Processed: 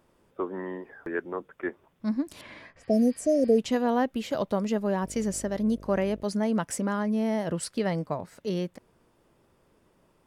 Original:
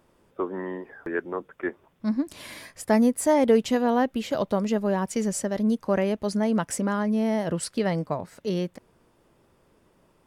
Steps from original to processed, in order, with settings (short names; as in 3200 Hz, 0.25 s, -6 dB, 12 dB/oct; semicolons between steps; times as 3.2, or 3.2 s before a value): 2.81–3.56 spectral repair 760–5100 Hz before; 5.02–6.2 buzz 50 Hz, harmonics 13, -44 dBFS -4 dB/oct; 2.41–3.72 low-pass opened by the level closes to 2300 Hz, open at -15.5 dBFS; gain -2.5 dB